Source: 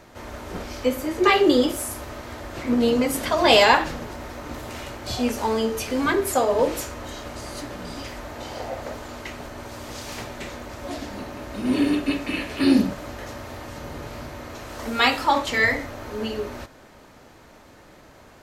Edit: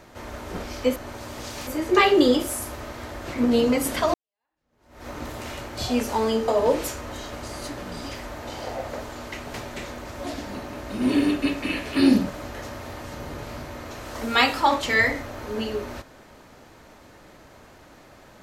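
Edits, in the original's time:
3.43–4.36 fade in exponential
5.77–6.41 cut
9.47–10.18 move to 0.96

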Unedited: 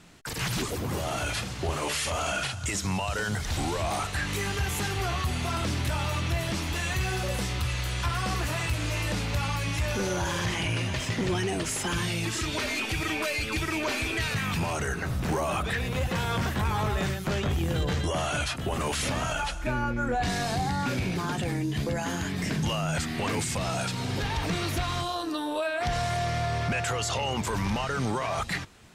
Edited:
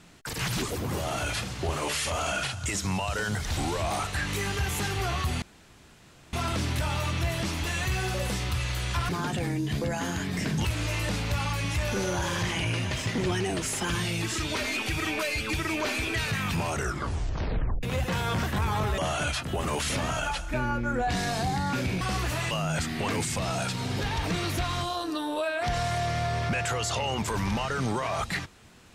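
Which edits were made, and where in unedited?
5.42 insert room tone 0.91 s
8.18–8.68 swap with 21.14–22.7
14.81 tape stop 1.05 s
17.01–18.11 cut

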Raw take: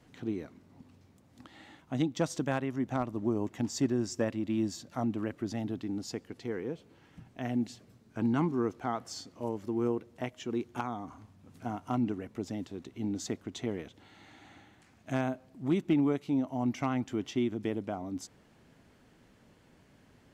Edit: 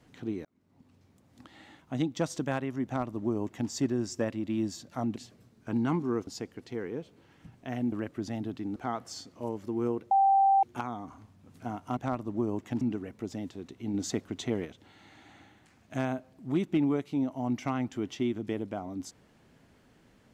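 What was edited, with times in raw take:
0.45–1.52 fade in equal-power
2.85–3.69 copy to 11.97
5.16–6 swap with 7.65–8.76
10.11–10.63 bleep 783 Hz -19 dBFS
13.1–13.81 gain +3.5 dB

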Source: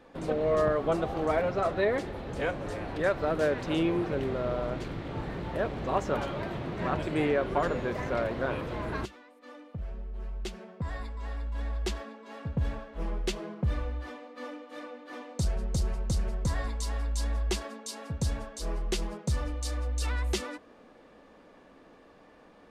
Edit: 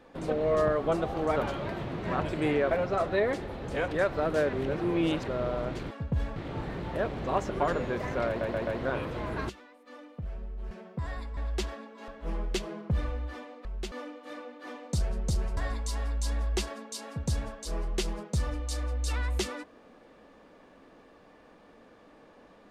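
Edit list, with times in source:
2.53–2.93 cut
3.58–4.33 reverse
6.1–7.45 move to 1.36
8.23 stutter 0.13 s, 4 plays
10.27–10.54 move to 14.38
11.2–11.65 cut
12.36–12.81 move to 4.96
16.03–16.51 cut

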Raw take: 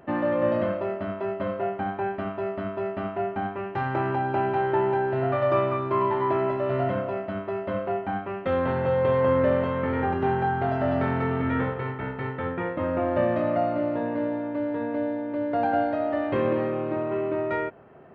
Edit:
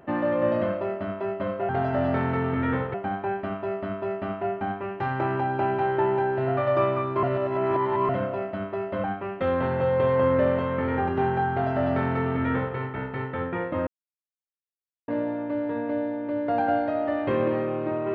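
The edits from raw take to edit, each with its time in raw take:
5.98–6.84 reverse
7.79–8.09 cut
10.56–11.81 copy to 1.69
12.92–14.13 mute

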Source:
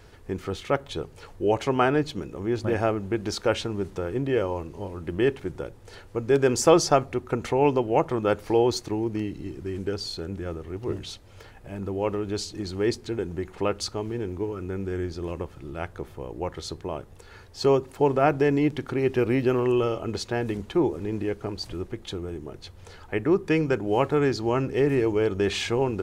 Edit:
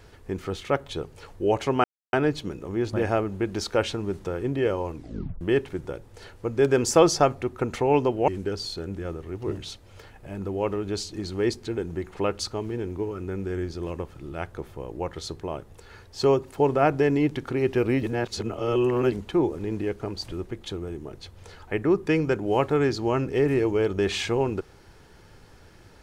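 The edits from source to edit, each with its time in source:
1.84 insert silence 0.29 s
4.64 tape stop 0.48 s
7.99–9.69 cut
19.44–20.53 reverse

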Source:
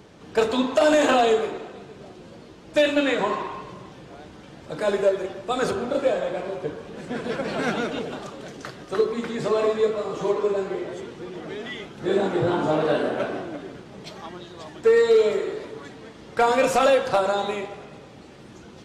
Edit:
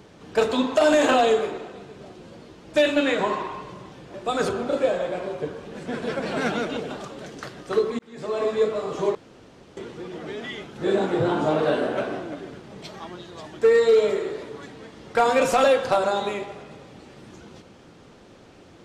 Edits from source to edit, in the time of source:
4.14–5.36 cut
9.21–9.82 fade in linear
10.37–10.99 room tone

